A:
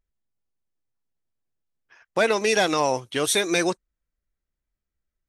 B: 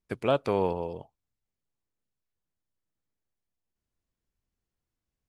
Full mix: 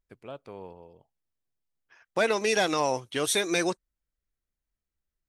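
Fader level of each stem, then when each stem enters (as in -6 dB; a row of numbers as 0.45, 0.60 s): -4.0, -16.5 dB; 0.00, 0.00 s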